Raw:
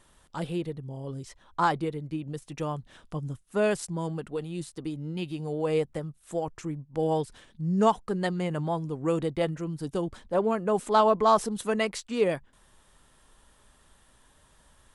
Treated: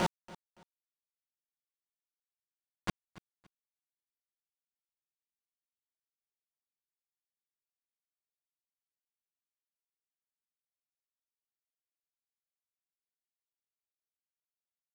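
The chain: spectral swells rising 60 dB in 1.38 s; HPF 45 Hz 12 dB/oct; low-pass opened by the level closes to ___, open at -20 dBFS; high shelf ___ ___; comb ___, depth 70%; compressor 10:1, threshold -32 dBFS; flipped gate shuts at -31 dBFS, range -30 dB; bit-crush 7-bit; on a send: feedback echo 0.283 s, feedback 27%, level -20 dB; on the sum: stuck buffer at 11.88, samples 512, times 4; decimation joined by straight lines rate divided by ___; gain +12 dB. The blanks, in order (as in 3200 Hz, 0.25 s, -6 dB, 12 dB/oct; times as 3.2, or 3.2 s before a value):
1800 Hz, 8600 Hz, -8.5 dB, 5.5 ms, 3×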